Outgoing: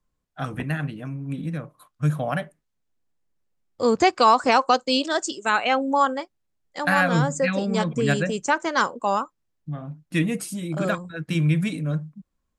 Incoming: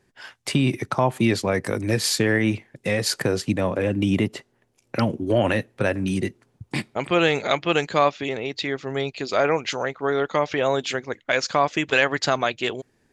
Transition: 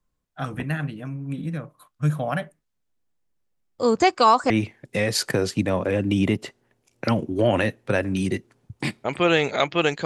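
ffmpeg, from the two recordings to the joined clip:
ffmpeg -i cue0.wav -i cue1.wav -filter_complex "[0:a]apad=whole_dur=10.05,atrim=end=10.05,atrim=end=4.502[link_01];[1:a]atrim=start=2.408:end=7.96[link_02];[link_01][link_02]acrossfade=duration=0.004:curve1=hsin:curve2=hsin" out.wav

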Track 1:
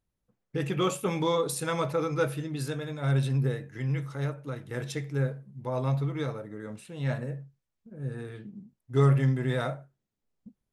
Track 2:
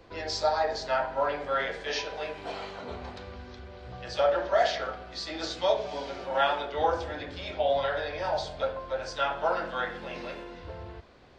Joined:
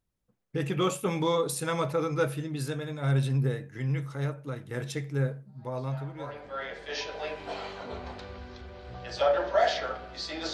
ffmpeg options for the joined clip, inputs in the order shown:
ffmpeg -i cue0.wav -i cue1.wav -filter_complex "[0:a]apad=whole_dur=10.53,atrim=end=10.53,atrim=end=7.27,asetpts=PTS-STARTPTS[link_01];[1:a]atrim=start=0.37:end=5.51,asetpts=PTS-STARTPTS[link_02];[link_01][link_02]acrossfade=duration=1.88:curve1=qua:curve2=qua" out.wav

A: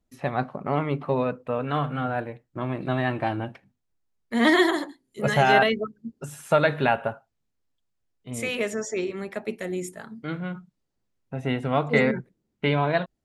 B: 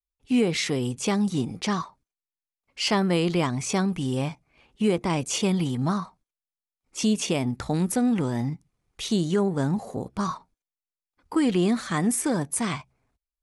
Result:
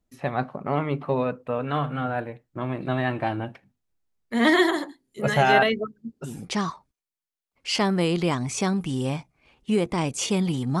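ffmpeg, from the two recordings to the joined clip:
ffmpeg -i cue0.wav -i cue1.wav -filter_complex "[0:a]apad=whole_dur=10.8,atrim=end=10.8,atrim=end=6.46,asetpts=PTS-STARTPTS[link_01];[1:a]atrim=start=1.34:end=5.92,asetpts=PTS-STARTPTS[link_02];[link_01][link_02]acrossfade=duration=0.24:curve1=tri:curve2=tri" out.wav

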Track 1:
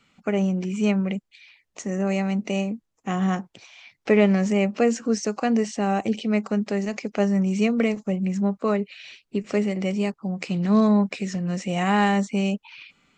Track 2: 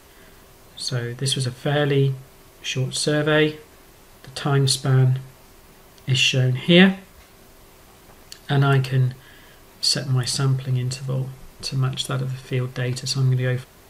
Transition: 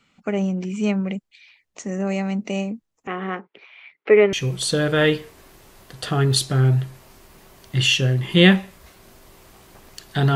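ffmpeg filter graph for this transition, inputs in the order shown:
ffmpeg -i cue0.wav -i cue1.wav -filter_complex "[0:a]asettb=1/sr,asplit=3[link_01][link_02][link_03];[link_01]atrim=end=3.074[link_04];[link_02]atrim=start=3.07:end=4.33,asetpts=PTS-STARTPTS,afade=type=in:duration=0.004:curve=qsin,afade=type=out:start_time=1.256:duration=0.004:curve=qsin,highpass=320,equalizer=frequency=410:width_type=q:width=4:gain=9,equalizer=frequency=710:width_type=q:width=4:gain=-4,equalizer=frequency=1300:width_type=q:width=4:gain=4,equalizer=frequency=2100:width_type=q:width=4:gain=6,lowpass=frequency=3200:width=0.5412,lowpass=frequency=3200:width=1.3066[link_05];[link_03]atrim=start=4.326[link_06];[link_04][link_05]acrossfade=duration=0.004:curve1=hsin:curve2=qsin[link_07];[link_07][link_06]acrossfade=duration=0.004:curve1=qsin:curve2=hsin,apad=whole_dur=10.35,atrim=end=10.35,atrim=end=4.332[link_08];[1:a]atrim=start=2.668:end=8.69[link_09];[link_08][link_09]acrossfade=duration=0.004:curve1=hsin:curve2=hsin" out.wav

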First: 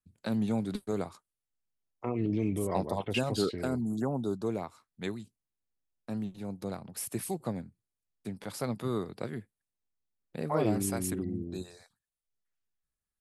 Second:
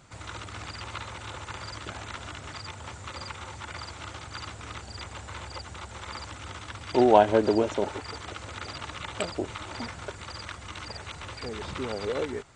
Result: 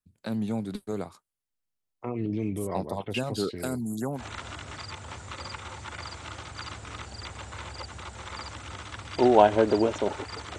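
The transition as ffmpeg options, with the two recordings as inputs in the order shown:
ffmpeg -i cue0.wav -i cue1.wav -filter_complex "[0:a]asettb=1/sr,asplit=3[link_01][link_02][link_03];[link_01]atrim=end=3.564[link_04];[link_02]atrim=start=3.56:end=4.25,asetpts=PTS-STARTPTS,afade=type=in:duration=0.004:curve=qsin,afade=type=out:start_time=0.686:duration=0.004:curve=qsin,aemphasis=mode=production:type=75kf[link_05];[link_03]atrim=start=4.246[link_06];[link_04][link_05]acrossfade=duration=0.004:curve1=hsin:curve2=qsin[link_07];[link_07][link_06]acrossfade=duration=0.004:curve1=qsin:curve2=hsin,apad=whole_dur=10.58,atrim=end=10.58,atrim=end=4.25,asetpts=PTS-STARTPTS[link_08];[1:a]atrim=start=1.89:end=8.34,asetpts=PTS-STARTPTS[link_09];[link_08][link_09]acrossfade=duration=0.12:curve1=tri:curve2=tri" out.wav

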